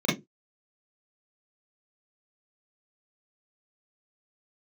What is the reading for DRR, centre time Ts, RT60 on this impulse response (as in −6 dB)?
−6.5 dB, 39 ms, non-exponential decay